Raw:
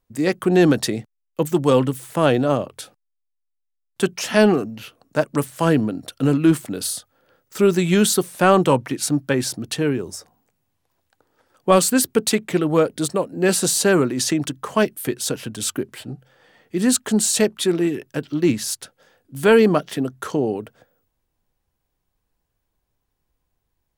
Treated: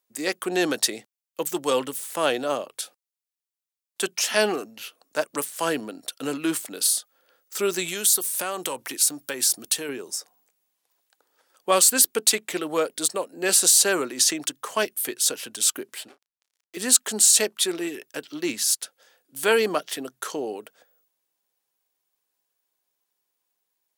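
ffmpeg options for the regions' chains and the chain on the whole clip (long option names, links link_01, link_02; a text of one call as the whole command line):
ffmpeg -i in.wav -filter_complex "[0:a]asettb=1/sr,asplit=3[link_01][link_02][link_03];[link_01]atrim=end=7.884[link_04];[link_02]atrim=start=7.88:end=9.89,asetpts=PTS-STARTPTS,afade=type=in:duration=0.004:curve=qsin,afade=type=out:start_time=2.006:duration=0.004:curve=qsin,highshelf=frequency=7300:gain=11.5,acompressor=threshold=-20dB:ratio=4:attack=3.2:release=140:knee=1:detection=peak[link_05];[link_03]atrim=start=9.886[link_06];[link_04][link_05]acrossfade=duration=0.004:curve1=hsin:curve2=qsin[link_07];[link_07][link_06]acrossfade=duration=0.004:curve1=qsin:curve2=hsin,asettb=1/sr,asplit=3[link_08][link_09][link_10];[link_08]atrim=end=16.084[link_11];[link_09]atrim=start=16.08:end=16.77,asetpts=PTS-STARTPTS,afade=type=in:duration=0.004:curve=qsin,afade=type=out:start_time=0.686:duration=0.004:curve=qsin,highpass=470,acrusher=bits=6:mix=0:aa=0.5,asplit=2[link_12][link_13];[link_13]adelay=34,volume=-12dB[link_14];[link_12][link_14]amix=inputs=2:normalize=0,atrim=end_sample=30429[link_15];[link_10]atrim=start=16.766[link_16];[link_11][link_15]acrossfade=duration=0.004:curve1=hsin:curve2=qsin[link_17];[link_17][link_16]acrossfade=duration=0.004:curve1=qsin:curve2=hsin,highpass=390,highshelf=frequency=2700:gain=11,volume=-5.5dB" out.wav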